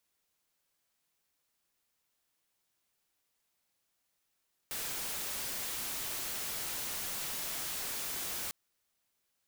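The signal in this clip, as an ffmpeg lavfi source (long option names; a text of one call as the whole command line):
ffmpeg -f lavfi -i "anoisesrc=color=white:amplitude=0.0218:duration=3.8:sample_rate=44100:seed=1" out.wav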